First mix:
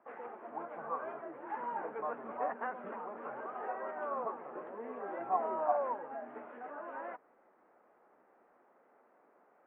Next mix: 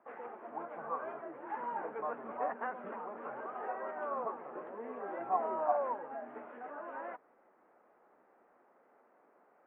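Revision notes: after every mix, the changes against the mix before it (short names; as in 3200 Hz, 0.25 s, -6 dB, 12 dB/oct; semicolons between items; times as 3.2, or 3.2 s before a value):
none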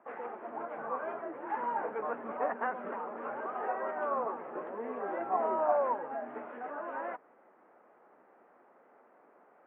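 background +5.0 dB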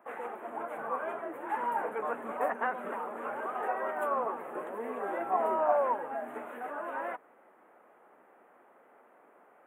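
master: remove air absorption 430 m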